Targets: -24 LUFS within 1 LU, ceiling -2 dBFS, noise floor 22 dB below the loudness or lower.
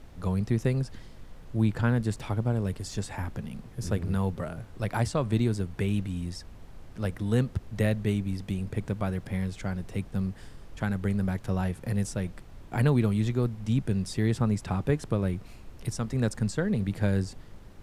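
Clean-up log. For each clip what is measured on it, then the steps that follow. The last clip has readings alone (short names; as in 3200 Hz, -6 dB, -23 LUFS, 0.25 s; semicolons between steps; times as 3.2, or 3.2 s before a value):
noise floor -48 dBFS; noise floor target -52 dBFS; loudness -29.5 LUFS; peak -11.5 dBFS; loudness target -24.0 LUFS
-> noise print and reduce 6 dB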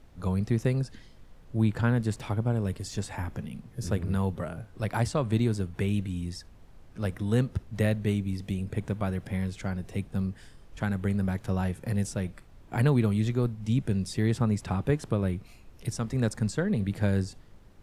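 noise floor -52 dBFS; loudness -29.5 LUFS; peak -11.5 dBFS; loudness target -24.0 LUFS
-> gain +5.5 dB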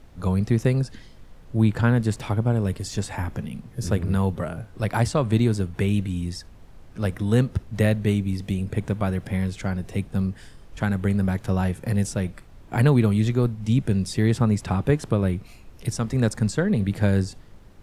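loudness -24.0 LUFS; peak -6.0 dBFS; noise floor -47 dBFS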